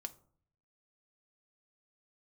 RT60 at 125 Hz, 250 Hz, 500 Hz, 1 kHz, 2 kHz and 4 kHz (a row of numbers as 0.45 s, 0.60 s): 0.95 s, 0.70 s, 0.55 s, 0.50 s, 0.30 s, 0.25 s